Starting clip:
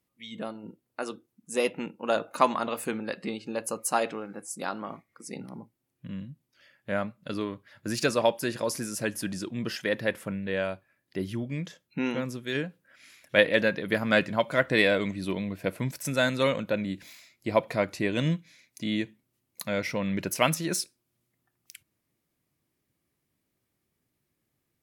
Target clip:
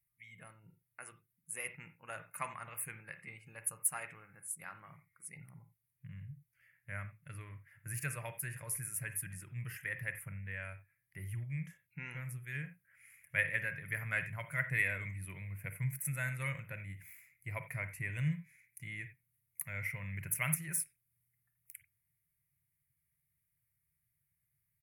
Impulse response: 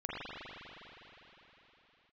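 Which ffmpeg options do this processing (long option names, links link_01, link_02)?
-filter_complex "[0:a]firequalizer=gain_entry='entry(150,0);entry(210,-27);entry(2100,0);entry(3700,-29);entry(10000,4)':delay=0.05:min_phase=1,asplit=2[link_01][link_02];[1:a]atrim=start_sample=2205,atrim=end_sample=4410[link_03];[link_02][link_03]afir=irnorm=-1:irlink=0,volume=-5.5dB[link_04];[link_01][link_04]amix=inputs=2:normalize=0,volume=-5.5dB"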